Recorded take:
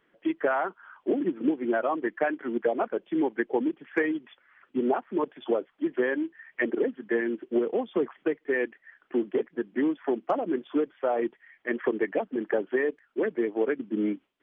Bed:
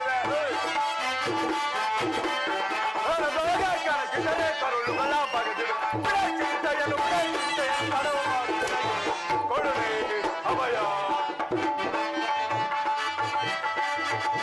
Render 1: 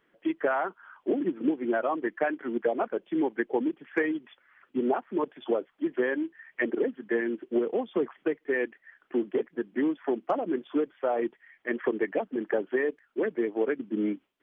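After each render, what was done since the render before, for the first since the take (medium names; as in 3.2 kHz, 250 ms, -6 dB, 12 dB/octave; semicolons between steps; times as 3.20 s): trim -1 dB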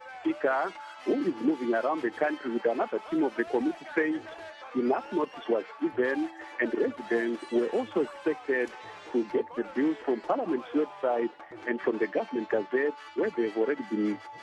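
add bed -17.5 dB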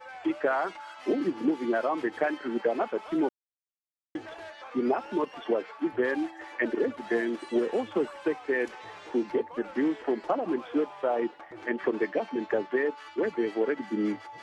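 3.29–4.15 s: mute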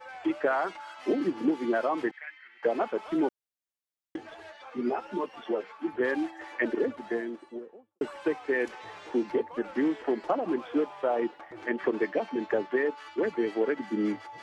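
2.11–2.63 s: ladder band-pass 2.2 kHz, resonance 70%; 4.16–6.01 s: three-phase chorus; 6.60–8.01 s: studio fade out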